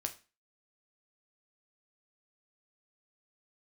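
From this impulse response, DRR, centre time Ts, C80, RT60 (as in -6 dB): 5.0 dB, 9 ms, 20.5 dB, 0.30 s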